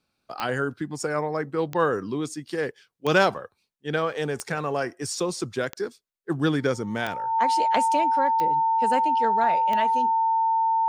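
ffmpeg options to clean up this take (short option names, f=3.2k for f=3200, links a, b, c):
-af "adeclick=t=4,bandreject=f=900:w=30"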